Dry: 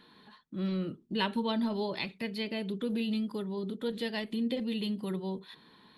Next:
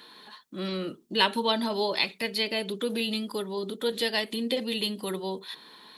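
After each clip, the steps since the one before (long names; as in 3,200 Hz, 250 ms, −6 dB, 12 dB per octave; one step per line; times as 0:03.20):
bass and treble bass −15 dB, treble +8 dB
level +8 dB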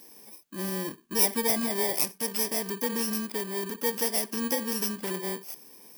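samples in bit-reversed order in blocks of 32 samples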